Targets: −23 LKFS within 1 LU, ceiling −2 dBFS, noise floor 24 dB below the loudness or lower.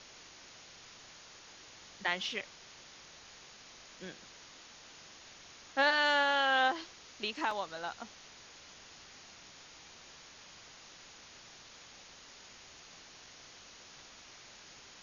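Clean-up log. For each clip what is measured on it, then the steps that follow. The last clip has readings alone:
number of dropouts 1; longest dropout 2.1 ms; background noise floor −55 dBFS; target noise floor −56 dBFS; integrated loudness −31.5 LKFS; sample peak −15.5 dBFS; target loudness −23.0 LKFS
→ repair the gap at 0:07.51, 2.1 ms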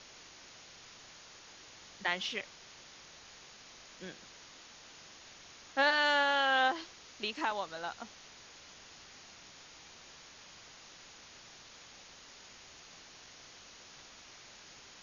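number of dropouts 0; background noise floor −55 dBFS; target noise floor −56 dBFS
→ broadband denoise 6 dB, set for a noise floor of −55 dBFS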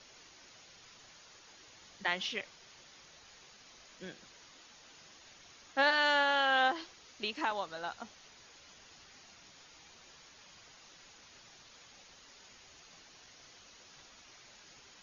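background noise floor −58 dBFS; integrated loudness −31.5 LKFS; sample peak −15.5 dBFS; target loudness −23.0 LKFS
→ level +8.5 dB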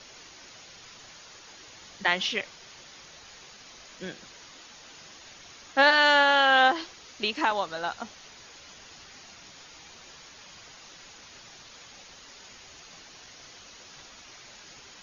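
integrated loudness −23.0 LKFS; sample peak −7.0 dBFS; background noise floor −50 dBFS

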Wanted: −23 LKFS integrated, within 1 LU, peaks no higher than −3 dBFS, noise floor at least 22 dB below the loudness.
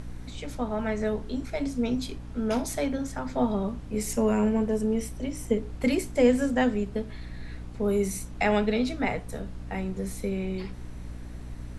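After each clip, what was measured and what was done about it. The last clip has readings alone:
mains hum 60 Hz; hum harmonics up to 300 Hz; level of the hum −38 dBFS; background noise floor −40 dBFS; target noise floor −51 dBFS; integrated loudness −28.5 LKFS; sample peak −9.0 dBFS; target loudness −23.0 LKFS
→ hum removal 60 Hz, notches 5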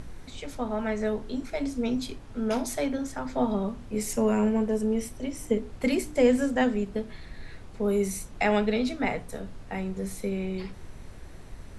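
mains hum none found; background noise floor −44 dBFS; target noise floor −51 dBFS
→ noise reduction from a noise print 7 dB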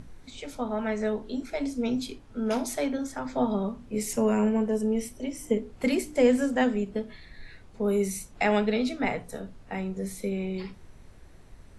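background noise floor −51 dBFS; integrated loudness −28.5 LKFS; sample peak −9.5 dBFS; target loudness −23.0 LKFS
→ level +5.5 dB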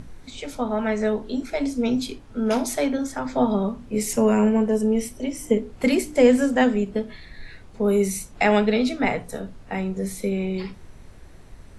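integrated loudness −23.0 LKFS; sample peak −4.0 dBFS; background noise floor −45 dBFS

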